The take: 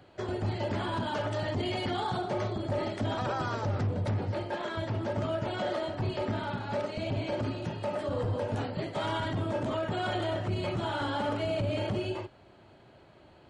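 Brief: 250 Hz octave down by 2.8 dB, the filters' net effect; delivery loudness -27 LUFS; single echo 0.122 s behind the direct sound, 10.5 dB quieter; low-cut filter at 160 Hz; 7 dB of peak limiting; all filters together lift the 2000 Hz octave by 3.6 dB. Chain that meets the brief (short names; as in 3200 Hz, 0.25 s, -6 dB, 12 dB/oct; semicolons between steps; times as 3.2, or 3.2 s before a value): HPF 160 Hz; bell 250 Hz -3 dB; bell 2000 Hz +5 dB; limiter -26.5 dBFS; echo 0.122 s -10.5 dB; gain +8 dB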